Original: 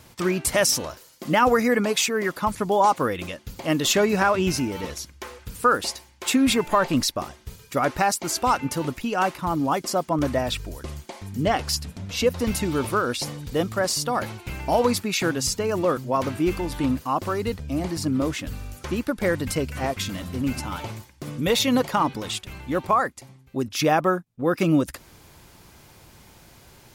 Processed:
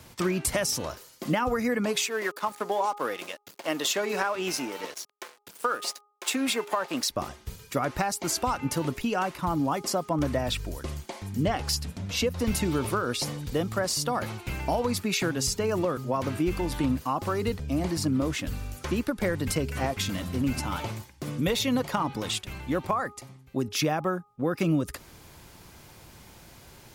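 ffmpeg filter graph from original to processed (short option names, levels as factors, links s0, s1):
-filter_complex "[0:a]asettb=1/sr,asplit=3[s0][s1][s2];[s0]atrim=end=2.074[s3];[s1]atrim=start=2.07:end=7.1,asetpts=PTS-STARTPTS,afade=t=in:d=0.004:c=qsin,afade=t=out:st=5.026:d=0.004:c=qsin,aeval=exprs='sgn(val(0))*max(abs(val(0))-0.0112,0)':c=same,highpass=380[s4];[s2]atrim=start=7.096[s5];[s3][s4]acrossfade=d=0.004:c1=hsin:c2=qsin[s6];[s6][s5]acrossfade=d=0.004:c1=qsin:c2=hsin,bandreject=f=412.7:t=h:w=4,bandreject=f=825.4:t=h:w=4,bandreject=f=1238.1:t=h:w=4,acrossover=split=150[s7][s8];[s8]acompressor=threshold=0.0631:ratio=6[s9];[s7][s9]amix=inputs=2:normalize=0"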